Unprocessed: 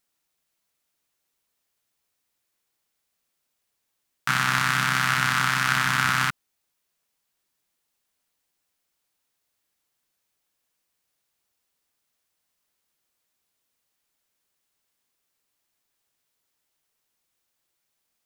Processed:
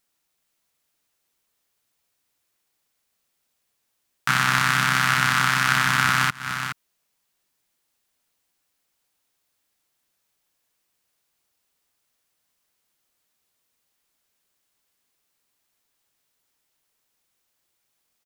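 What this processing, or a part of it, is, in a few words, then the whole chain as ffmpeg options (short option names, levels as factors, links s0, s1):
ducked delay: -filter_complex "[0:a]asplit=3[s0][s1][s2];[s1]adelay=419,volume=0.398[s3];[s2]apad=whole_len=823392[s4];[s3][s4]sidechaincompress=threshold=0.00891:ratio=8:attack=21:release=133[s5];[s0][s5]amix=inputs=2:normalize=0,volume=1.33"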